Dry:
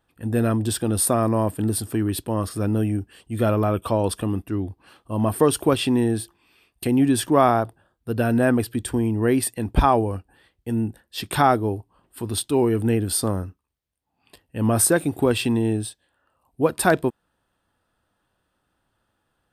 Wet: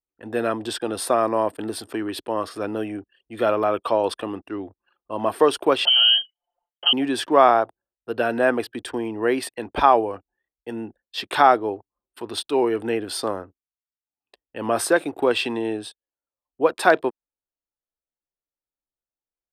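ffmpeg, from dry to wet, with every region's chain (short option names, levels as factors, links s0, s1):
-filter_complex "[0:a]asettb=1/sr,asplit=3[s0][s1][s2];[s0]atrim=end=5.854[s3];[s1]atrim=start=5.85:end=6.93,asetpts=PTS-STARTPTS,afade=t=in:d=0.004:c=qsin,afade=t=out:st=1.076:d=0.004:c=qsin,lowpass=f=2800:t=q:w=0.5098,lowpass=f=2800:t=q:w=0.6013,lowpass=f=2800:t=q:w=0.9,lowpass=f=2800:t=q:w=2.563,afreqshift=-3300,bandreject=f=2400:w=6.3,aecho=1:1:5.7:0.9,atrim=end_sample=47628[s4];[s2]atrim=start=6.926[s5];[s3][s4]acrossfade=d=0.004:c1=hsin:c2=qsin[s6];[s6][s5]acrossfade=d=0.004:c1=qsin:c2=hsin,anlmdn=0.158,acrossover=split=340 5400:gain=0.0708 1 0.158[s7][s8][s9];[s7][s8][s9]amix=inputs=3:normalize=0,volume=1.5"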